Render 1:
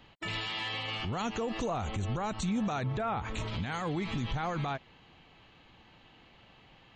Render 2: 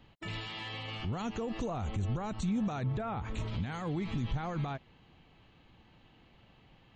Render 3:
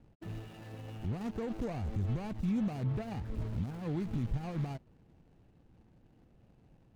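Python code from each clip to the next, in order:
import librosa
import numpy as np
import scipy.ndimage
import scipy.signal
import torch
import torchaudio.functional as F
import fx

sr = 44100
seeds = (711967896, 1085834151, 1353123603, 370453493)

y1 = fx.low_shelf(x, sr, hz=390.0, db=8.0)
y1 = F.gain(torch.from_numpy(y1), -6.5).numpy()
y2 = scipy.signal.medfilt(y1, 41)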